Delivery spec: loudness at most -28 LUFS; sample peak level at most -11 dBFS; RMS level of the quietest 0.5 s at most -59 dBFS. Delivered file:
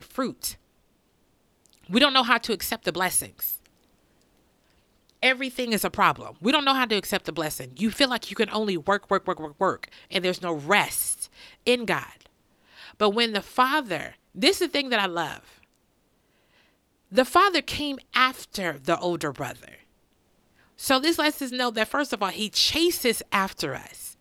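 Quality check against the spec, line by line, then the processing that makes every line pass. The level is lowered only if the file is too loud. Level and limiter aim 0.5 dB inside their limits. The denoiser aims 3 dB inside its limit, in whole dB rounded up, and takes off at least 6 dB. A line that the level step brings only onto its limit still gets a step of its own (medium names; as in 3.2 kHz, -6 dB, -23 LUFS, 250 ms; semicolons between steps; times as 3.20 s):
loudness -24.5 LUFS: fail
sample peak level -3.5 dBFS: fail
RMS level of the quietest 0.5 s -67 dBFS: pass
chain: trim -4 dB; peak limiter -11.5 dBFS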